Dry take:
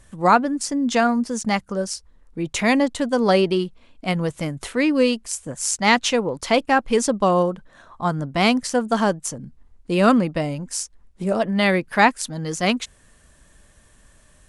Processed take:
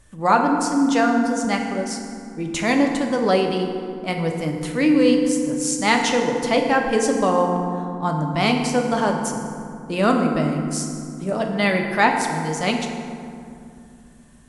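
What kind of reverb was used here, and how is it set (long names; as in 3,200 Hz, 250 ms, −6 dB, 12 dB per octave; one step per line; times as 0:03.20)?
feedback delay network reverb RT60 2.5 s, low-frequency decay 1.5×, high-frequency decay 0.5×, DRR 2 dB
level −2.5 dB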